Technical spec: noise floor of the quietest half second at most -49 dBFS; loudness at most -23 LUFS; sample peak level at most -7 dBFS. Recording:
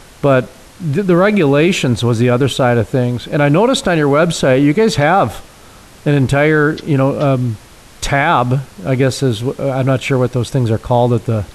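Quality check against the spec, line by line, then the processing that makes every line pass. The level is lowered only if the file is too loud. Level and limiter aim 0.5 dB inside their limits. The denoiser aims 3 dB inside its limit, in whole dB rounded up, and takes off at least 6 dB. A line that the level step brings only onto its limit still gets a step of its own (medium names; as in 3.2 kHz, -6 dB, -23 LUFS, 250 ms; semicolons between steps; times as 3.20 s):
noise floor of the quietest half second -40 dBFS: fail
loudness -14.0 LUFS: fail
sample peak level -2.5 dBFS: fail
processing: trim -9.5 dB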